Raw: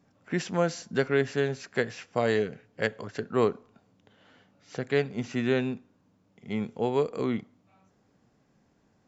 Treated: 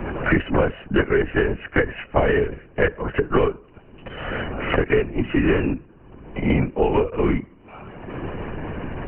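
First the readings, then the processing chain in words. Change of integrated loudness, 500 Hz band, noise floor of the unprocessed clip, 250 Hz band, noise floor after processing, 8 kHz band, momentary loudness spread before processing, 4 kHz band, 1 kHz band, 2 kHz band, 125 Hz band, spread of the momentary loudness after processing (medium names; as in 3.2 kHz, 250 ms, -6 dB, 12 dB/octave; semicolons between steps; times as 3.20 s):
+7.0 dB, +6.5 dB, -67 dBFS, +8.5 dB, -49 dBFS, no reading, 9 LU, +4.5 dB, +8.5 dB, +9.5 dB, +9.5 dB, 14 LU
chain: brick-wall FIR low-pass 3.1 kHz; LPC vocoder at 8 kHz whisper; three bands compressed up and down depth 100%; trim +8 dB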